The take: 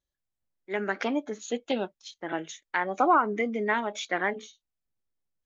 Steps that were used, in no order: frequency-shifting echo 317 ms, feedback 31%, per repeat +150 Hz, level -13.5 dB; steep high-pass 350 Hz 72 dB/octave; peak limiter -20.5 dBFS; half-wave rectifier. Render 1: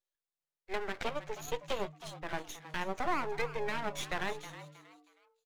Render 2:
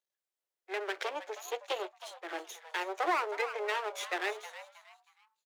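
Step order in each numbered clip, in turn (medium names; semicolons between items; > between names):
steep high-pass > peak limiter > half-wave rectifier > frequency-shifting echo; half-wave rectifier > steep high-pass > frequency-shifting echo > peak limiter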